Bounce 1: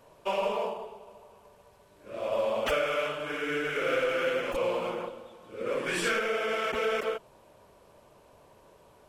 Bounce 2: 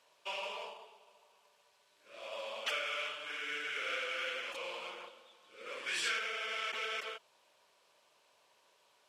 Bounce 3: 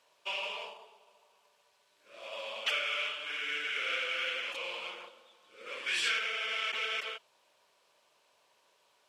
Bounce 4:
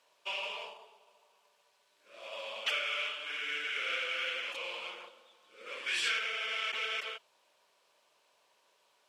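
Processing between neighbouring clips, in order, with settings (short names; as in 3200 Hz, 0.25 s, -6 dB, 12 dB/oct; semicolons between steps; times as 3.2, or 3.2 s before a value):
band-pass 4100 Hz, Q 0.87
dynamic EQ 2800 Hz, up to +6 dB, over -51 dBFS, Q 1.1
HPF 150 Hz 6 dB/oct; gain -1 dB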